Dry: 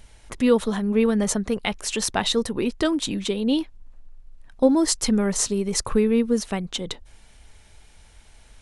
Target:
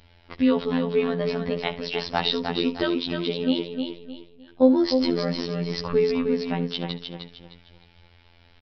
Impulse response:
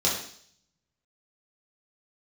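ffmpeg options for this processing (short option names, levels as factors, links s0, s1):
-filter_complex "[0:a]atempo=1,highpass=f=46:p=1,asplit=2[s0][s1];[s1]aecho=0:1:307|614|921|1228:0.501|0.155|0.0482|0.0149[s2];[s0][s2]amix=inputs=2:normalize=0,afftfilt=real='hypot(re,im)*cos(PI*b)':imag='0':win_size=2048:overlap=0.75,asplit=2[s3][s4];[s4]aecho=0:1:70:0.15[s5];[s3][s5]amix=inputs=2:normalize=0,aresample=11025,aresample=44100,volume=1.26"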